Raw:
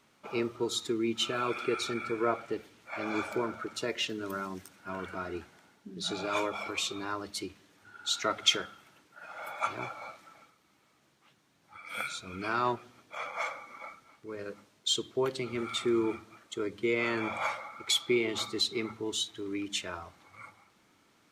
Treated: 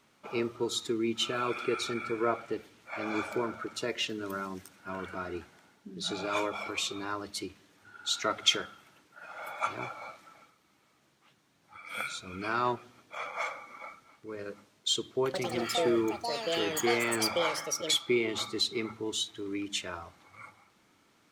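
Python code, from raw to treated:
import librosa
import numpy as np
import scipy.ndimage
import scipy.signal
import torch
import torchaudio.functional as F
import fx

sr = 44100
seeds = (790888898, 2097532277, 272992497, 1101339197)

y = fx.echo_pitch(x, sr, ms=100, semitones=6, count=2, db_per_echo=-3.0, at=(15.24, 18.95))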